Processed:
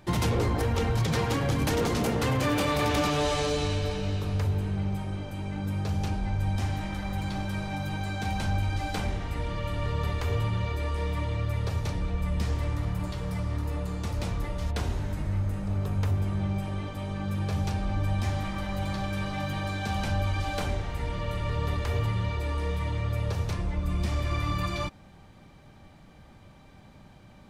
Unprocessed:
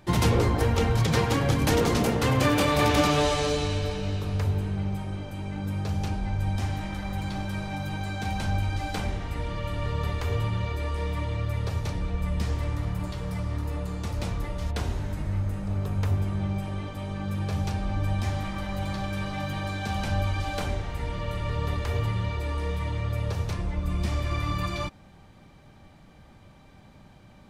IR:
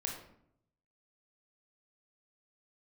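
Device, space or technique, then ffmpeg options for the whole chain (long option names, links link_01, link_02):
soft clipper into limiter: -af "asoftclip=type=tanh:threshold=-14.5dB,alimiter=limit=-18.5dB:level=0:latency=1:release=163"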